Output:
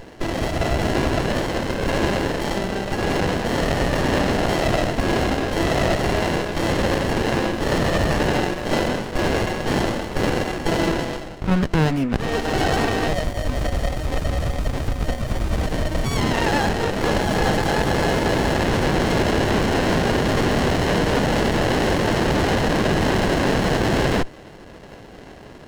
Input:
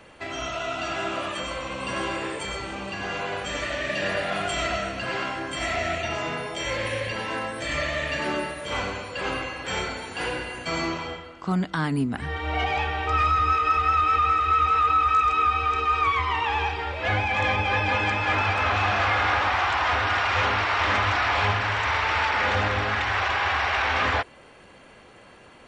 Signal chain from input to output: HPF 170 Hz; band shelf 1800 Hz +12.5 dB; limiter -10.5 dBFS, peak gain reduction 10 dB; running maximum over 33 samples; gain +5 dB

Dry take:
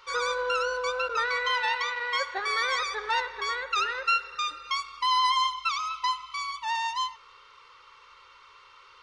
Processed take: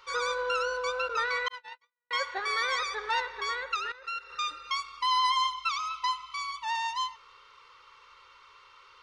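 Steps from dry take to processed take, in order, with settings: 1.48–2.11 gate -23 dBFS, range -58 dB; 3.76–4.3 level quantiser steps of 16 dB; gain -2 dB

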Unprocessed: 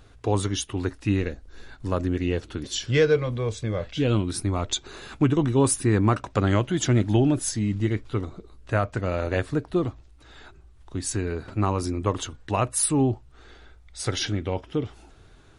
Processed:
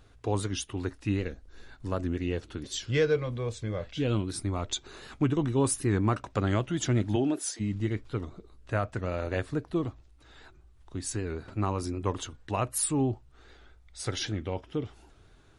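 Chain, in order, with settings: 7.15–7.59 HPF 130 Hz -> 460 Hz 24 dB/oct; record warp 78 rpm, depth 100 cents; gain -5.5 dB

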